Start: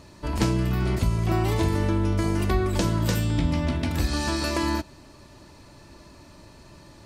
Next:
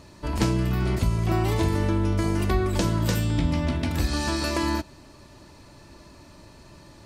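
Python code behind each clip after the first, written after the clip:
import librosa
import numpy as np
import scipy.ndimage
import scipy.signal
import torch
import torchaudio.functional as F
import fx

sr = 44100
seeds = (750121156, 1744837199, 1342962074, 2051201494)

y = x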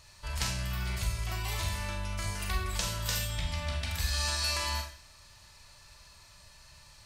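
y = fx.tone_stack(x, sr, knobs='10-0-10')
y = fx.rev_schroeder(y, sr, rt60_s=0.47, comb_ms=29, drr_db=2.5)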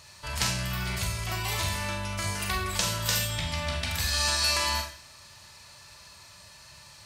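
y = scipy.signal.sosfilt(scipy.signal.butter(2, 96.0, 'highpass', fs=sr, output='sos'), x)
y = F.gain(torch.from_numpy(y), 6.0).numpy()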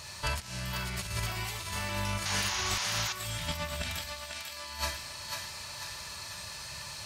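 y = fx.over_compress(x, sr, threshold_db=-35.0, ratio=-0.5)
y = fx.echo_thinned(y, sr, ms=495, feedback_pct=51, hz=640.0, wet_db=-4.0)
y = fx.spec_paint(y, sr, seeds[0], shape='noise', start_s=2.25, length_s=0.88, low_hz=720.0, high_hz=7000.0, level_db=-34.0)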